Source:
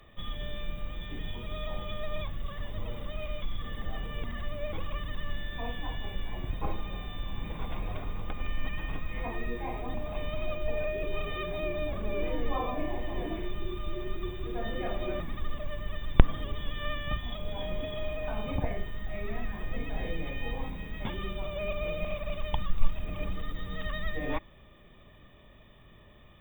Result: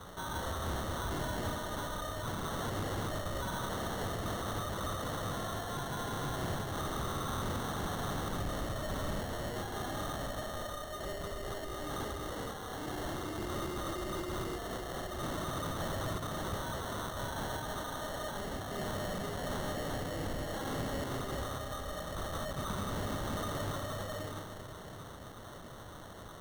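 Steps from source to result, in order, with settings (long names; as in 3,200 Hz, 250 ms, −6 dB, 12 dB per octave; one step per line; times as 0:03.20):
lower of the sound and its delayed copy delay 2.6 ms
high-pass filter 92 Hz 24 dB per octave
spectral tilt +2.5 dB per octave
compressor whose output falls as the input rises −44 dBFS, ratio −1
spring reverb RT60 3.9 s, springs 30 ms, chirp 30 ms, DRR 5 dB
decimation without filtering 18×
soft clipping −38 dBFS, distortion −15 dB
bass and treble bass +6 dB, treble 0 dB
level +5.5 dB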